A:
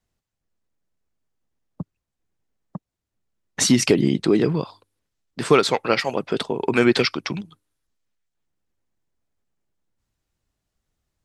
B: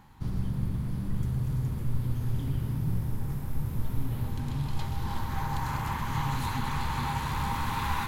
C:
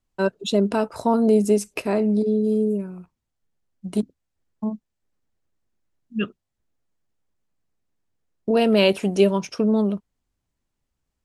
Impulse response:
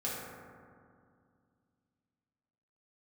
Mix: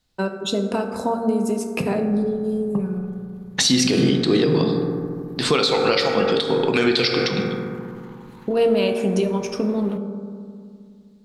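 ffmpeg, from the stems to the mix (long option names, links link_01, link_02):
-filter_complex "[0:a]equalizer=frequency=4000:width_type=o:width=0.85:gain=13,volume=0.5dB,asplit=2[link_01][link_02];[link_02]volume=-3.5dB[link_03];[1:a]alimiter=level_in=10dB:limit=-24dB:level=0:latency=1:release=28,volume=-10dB,bass=frequency=250:gain=-7,treble=frequency=4000:gain=-5,adelay=1900,volume=-4.5dB[link_04];[2:a]acompressor=threshold=-21dB:ratio=5,volume=-1dB,asplit=2[link_05][link_06];[link_06]volume=-4.5dB[link_07];[3:a]atrim=start_sample=2205[link_08];[link_03][link_07]amix=inputs=2:normalize=0[link_09];[link_09][link_08]afir=irnorm=-1:irlink=0[link_10];[link_01][link_04][link_05][link_10]amix=inputs=4:normalize=0,alimiter=limit=-8dB:level=0:latency=1:release=166"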